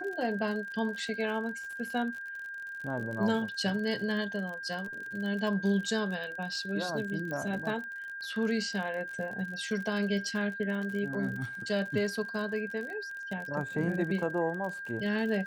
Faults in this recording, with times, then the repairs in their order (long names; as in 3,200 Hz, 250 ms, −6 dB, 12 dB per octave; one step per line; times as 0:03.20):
surface crackle 47 per second −37 dBFS
whistle 1,600 Hz −38 dBFS
0:07.31: click −25 dBFS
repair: click removal
notch filter 1,600 Hz, Q 30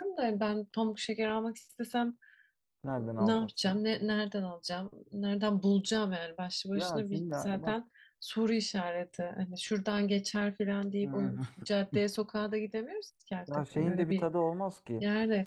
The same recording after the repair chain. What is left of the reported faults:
0:07.31: click